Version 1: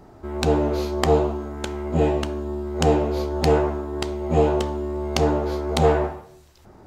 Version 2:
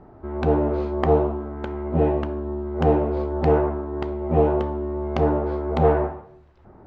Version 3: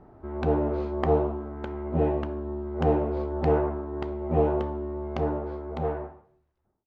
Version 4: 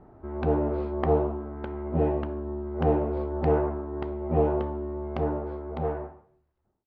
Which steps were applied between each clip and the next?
low-pass 1.6 kHz 12 dB/octave
fade out at the end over 2.21 s; trim -4.5 dB
distance through air 170 m

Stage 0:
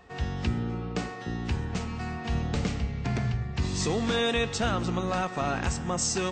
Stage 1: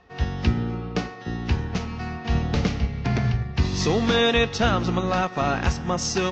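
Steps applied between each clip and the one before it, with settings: steep low-pass 6.3 kHz 48 dB/octave; upward expansion 1.5:1, over -42 dBFS; trim +8 dB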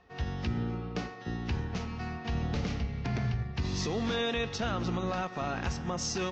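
peak limiter -17.5 dBFS, peak gain reduction 7.5 dB; trim -6 dB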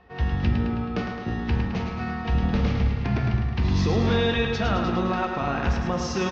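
distance through air 170 m; feedback delay 107 ms, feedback 60%, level -6 dB; reverberation RT60 1.1 s, pre-delay 7 ms, DRR 7 dB; trim +7 dB

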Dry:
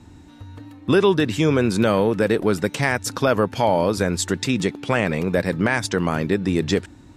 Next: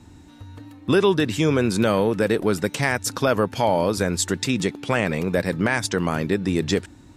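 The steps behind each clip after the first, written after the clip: treble shelf 5.4 kHz +4.5 dB; trim -1.5 dB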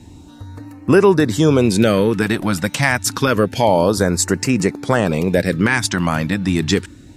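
LFO notch sine 0.28 Hz 390–3600 Hz; trim +6.5 dB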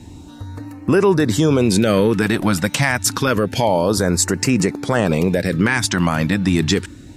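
peak limiter -8.5 dBFS, peak gain reduction 7 dB; trim +2.5 dB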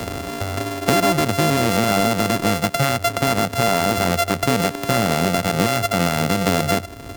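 sorted samples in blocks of 64 samples; three bands compressed up and down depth 70%; trim -2.5 dB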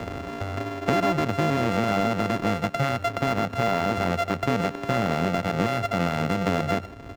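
median filter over 9 samples; delay 127 ms -21.5 dB; trim -5 dB

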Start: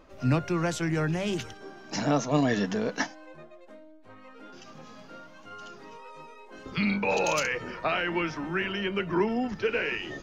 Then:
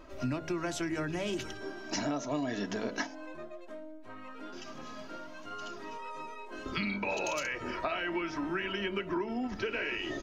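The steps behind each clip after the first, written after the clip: comb 3.1 ms, depth 47%; de-hum 53.64 Hz, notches 16; compression 6:1, threshold -33 dBFS, peak gain reduction 14 dB; trim +2 dB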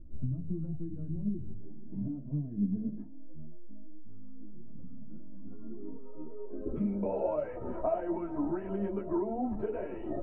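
tilt EQ -2 dB/octave; low-pass sweep 170 Hz -> 710 Hz, 4.99–7.46 s; three-phase chorus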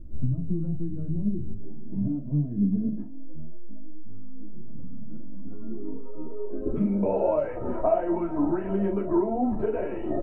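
doubling 41 ms -9 dB; trim +7 dB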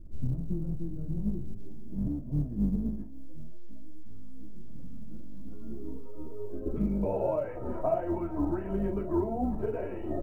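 octave divider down 2 oct, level -4 dB; short-mantissa float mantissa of 6-bit; trim -5.5 dB

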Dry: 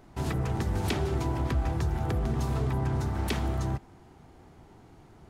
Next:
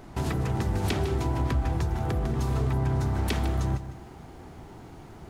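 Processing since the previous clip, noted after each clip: compression 2:1, threshold -38 dBFS, peak gain reduction 8.5 dB; bit-crushed delay 153 ms, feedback 35%, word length 11-bit, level -12 dB; trim +8 dB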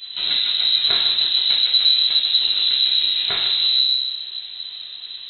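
simulated room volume 180 m³, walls mixed, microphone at 2 m; frequency inversion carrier 4 kHz

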